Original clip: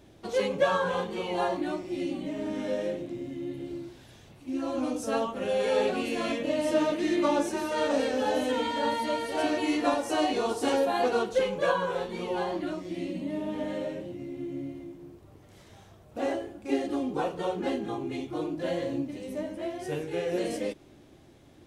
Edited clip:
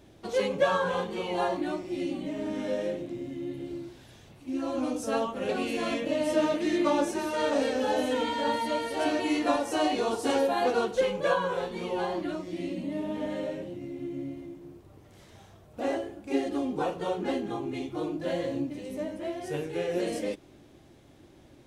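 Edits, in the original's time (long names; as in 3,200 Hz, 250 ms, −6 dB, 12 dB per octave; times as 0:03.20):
0:05.49–0:05.87: remove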